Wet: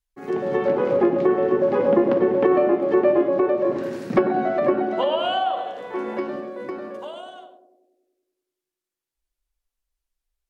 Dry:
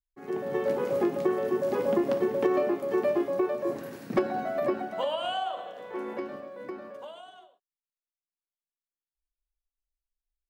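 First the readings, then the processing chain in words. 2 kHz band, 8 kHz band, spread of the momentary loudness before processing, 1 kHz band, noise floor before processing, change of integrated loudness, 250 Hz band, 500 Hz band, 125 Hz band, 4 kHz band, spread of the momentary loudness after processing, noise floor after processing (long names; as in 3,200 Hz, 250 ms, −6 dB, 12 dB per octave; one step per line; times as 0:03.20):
+7.0 dB, can't be measured, 14 LU, +8.5 dB, below −85 dBFS, +8.0 dB, +8.5 dB, +8.0 dB, +8.0 dB, +6.0 dB, 14 LU, below −85 dBFS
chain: feedback echo with a band-pass in the loop 96 ms, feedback 71%, band-pass 350 Hz, level −7 dB
treble cut that deepens with the level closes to 2,400 Hz, closed at −23 dBFS
level +7.5 dB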